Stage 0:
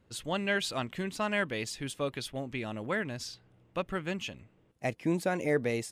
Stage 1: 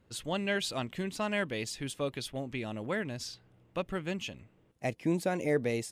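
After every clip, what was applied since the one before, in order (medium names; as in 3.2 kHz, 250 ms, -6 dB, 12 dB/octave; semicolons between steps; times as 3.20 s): dynamic bell 1.4 kHz, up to -4 dB, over -46 dBFS, Q 1.1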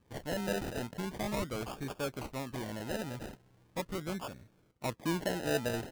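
in parallel at -6 dB: hard clipper -33.5 dBFS, distortion -6 dB; on the sum: decimation with a swept rate 31×, swing 60% 0.4 Hz; trim -5 dB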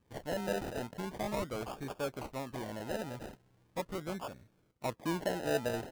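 dynamic bell 690 Hz, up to +5 dB, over -47 dBFS, Q 0.74; trim -3.5 dB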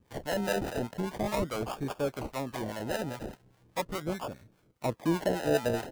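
harmonic tremolo 4.9 Hz, depth 70%, crossover 620 Hz; trim +8.5 dB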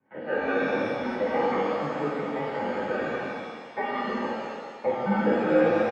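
comb 3 ms, depth 61%; mistuned SSB -130 Hz 390–2300 Hz; pitch-shifted reverb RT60 1.7 s, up +7 st, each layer -8 dB, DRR -6 dB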